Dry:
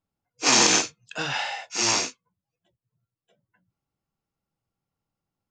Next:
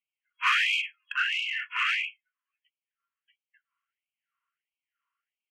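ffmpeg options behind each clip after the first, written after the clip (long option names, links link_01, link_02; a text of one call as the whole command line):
ffmpeg -i in.wav -filter_complex "[0:a]afftfilt=real='re*between(b*sr/4096,720,3300)':imag='im*between(b*sr/4096,720,3300)':win_size=4096:overlap=0.75,asplit=2[link_01][link_02];[link_02]highpass=frequency=720:poles=1,volume=18dB,asoftclip=type=tanh:threshold=-10dB[link_03];[link_01][link_03]amix=inputs=2:normalize=0,lowpass=frequency=1000:poles=1,volume=-6dB,afftfilt=real='re*gte(b*sr/1024,940*pow(2200/940,0.5+0.5*sin(2*PI*1.5*pts/sr)))':imag='im*gte(b*sr/1024,940*pow(2200/940,0.5+0.5*sin(2*PI*1.5*pts/sr)))':win_size=1024:overlap=0.75,volume=2.5dB" out.wav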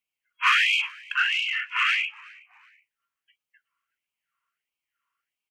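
ffmpeg -i in.wav -filter_complex "[0:a]asplit=3[link_01][link_02][link_03];[link_02]adelay=372,afreqshift=-130,volume=-24dB[link_04];[link_03]adelay=744,afreqshift=-260,volume=-33.4dB[link_05];[link_01][link_04][link_05]amix=inputs=3:normalize=0,volume=4dB" out.wav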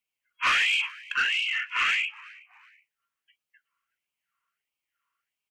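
ffmpeg -i in.wav -af "asoftclip=type=tanh:threshold=-17.5dB" out.wav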